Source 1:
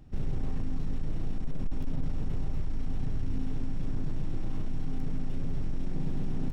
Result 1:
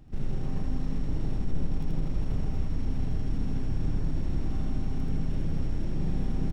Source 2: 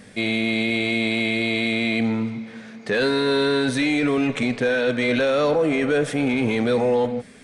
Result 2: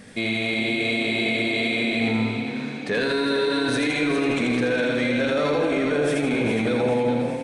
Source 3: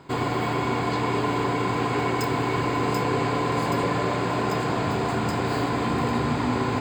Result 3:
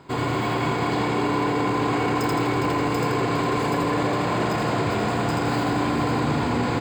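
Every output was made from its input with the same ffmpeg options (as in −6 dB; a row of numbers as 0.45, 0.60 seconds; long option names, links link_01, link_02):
-filter_complex "[0:a]asplit=2[link_01][link_02];[link_02]aecho=0:1:82|164|246|328|410|492|574:0.708|0.361|0.184|0.0939|0.0479|0.0244|0.0125[link_03];[link_01][link_03]amix=inputs=2:normalize=0,alimiter=limit=-15.5dB:level=0:latency=1:release=13,asplit=2[link_04][link_05];[link_05]asplit=6[link_06][link_07][link_08][link_09][link_10][link_11];[link_06]adelay=409,afreqshift=32,volume=-9dB[link_12];[link_07]adelay=818,afreqshift=64,volume=-15.2dB[link_13];[link_08]adelay=1227,afreqshift=96,volume=-21.4dB[link_14];[link_09]adelay=1636,afreqshift=128,volume=-27.6dB[link_15];[link_10]adelay=2045,afreqshift=160,volume=-33.8dB[link_16];[link_11]adelay=2454,afreqshift=192,volume=-40dB[link_17];[link_12][link_13][link_14][link_15][link_16][link_17]amix=inputs=6:normalize=0[link_18];[link_04][link_18]amix=inputs=2:normalize=0"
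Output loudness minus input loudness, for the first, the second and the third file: +3.5, −1.5, +1.5 LU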